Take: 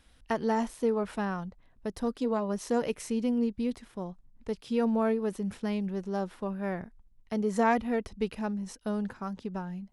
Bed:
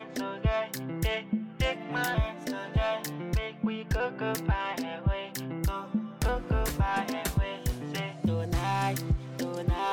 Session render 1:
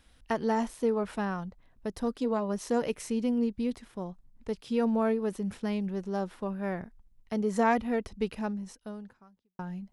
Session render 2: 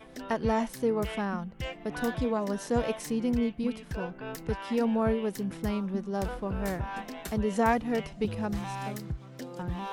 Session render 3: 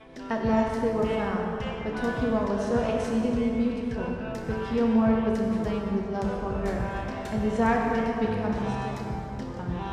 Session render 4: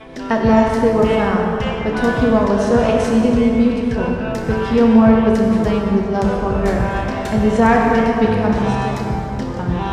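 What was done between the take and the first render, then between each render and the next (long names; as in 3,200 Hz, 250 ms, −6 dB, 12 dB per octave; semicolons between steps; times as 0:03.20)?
0:08.46–0:09.59: fade out quadratic
mix in bed −8 dB
high-frequency loss of the air 73 metres; dense smooth reverb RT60 3.4 s, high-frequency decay 0.55×, DRR −1 dB
level +11.5 dB; brickwall limiter −1 dBFS, peak gain reduction 2 dB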